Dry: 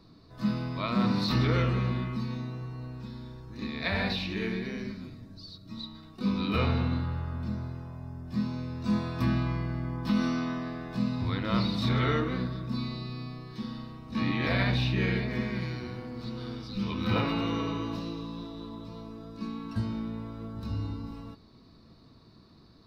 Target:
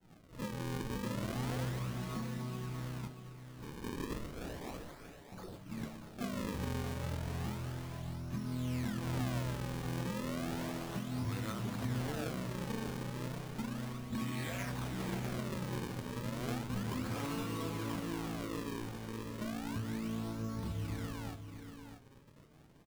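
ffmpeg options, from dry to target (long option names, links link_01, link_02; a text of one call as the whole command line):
ffmpeg -i in.wav -filter_complex "[0:a]agate=range=-33dB:threshold=-51dB:ratio=3:detection=peak,asettb=1/sr,asplit=3[link_01][link_02][link_03];[link_01]atrim=end=3.074[link_04];[link_02]atrim=start=3.07:end=5.32,asetpts=PTS-STARTPTS,afade=type=in:duration=0.004:curve=qsin,afade=type=out:start_time=2.246:duration=0.004:curve=qsin,highpass=frequency=1200:width=0.5412,highpass=frequency=1200:width=1.3066[link_05];[link_03]atrim=start=5.316[link_06];[link_04][link_05]acrossfade=duration=0.004:curve1=hsin:curve2=qsin[link_07];[link_07][link_06]acrossfade=duration=0.004:curve1=qsin:curve2=hsin,acompressor=threshold=-29dB:ratio=6,alimiter=level_in=4.5dB:limit=-24dB:level=0:latency=1:release=266,volume=-4.5dB,flanger=delay=5.3:depth=3.2:regen=56:speed=0.39:shape=triangular,acrusher=samples=37:mix=1:aa=0.000001:lfo=1:lforange=59.2:lforate=0.33,asplit=2[link_08][link_09];[link_09]adelay=27,volume=-11.5dB[link_10];[link_08][link_10]amix=inputs=2:normalize=0,aecho=1:1:630|637:0.119|0.335,volume=3dB" out.wav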